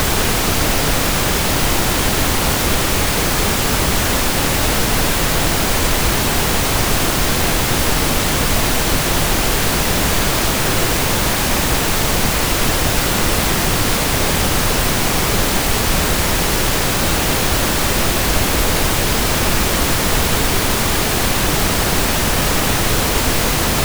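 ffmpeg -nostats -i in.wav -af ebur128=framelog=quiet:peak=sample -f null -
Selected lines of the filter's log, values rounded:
Integrated loudness:
  I:         -15.5 LUFS
  Threshold: -25.5 LUFS
Loudness range:
  LRA:         0.1 LU
  Threshold: -35.5 LUFS
  LRA low:   -15.6 LUFS
  LRA high:  -15.5 LUFS
Sample peak:
  Peak:       -1.5 dBFS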